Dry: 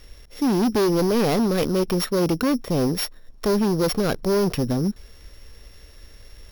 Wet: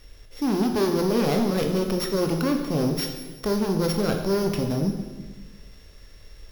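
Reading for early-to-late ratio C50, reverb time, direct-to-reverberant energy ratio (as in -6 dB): 5.5 dB, 1.3 s, 3.0 dB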